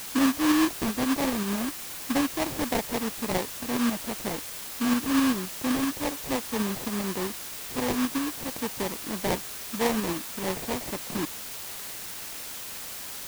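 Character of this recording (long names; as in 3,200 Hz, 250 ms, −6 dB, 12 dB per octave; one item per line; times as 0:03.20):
aliases and images of a low sample rate 1,400 Hz, jitter 20%
tremolo saw up 7.7 Hz, depth 40%
a quantiser's noise floor 6 bits, dither triangular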